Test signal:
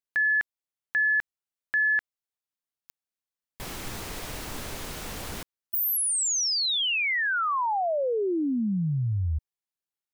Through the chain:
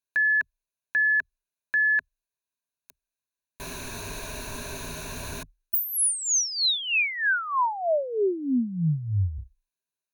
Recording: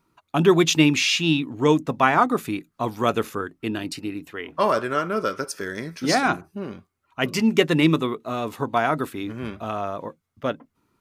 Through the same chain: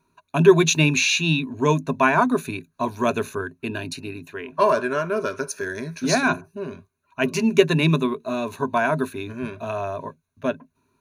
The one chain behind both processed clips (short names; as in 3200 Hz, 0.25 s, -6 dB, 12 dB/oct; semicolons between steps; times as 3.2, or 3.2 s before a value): ripple EQ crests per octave 1.5, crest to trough 13 dB; gain -1.5 dB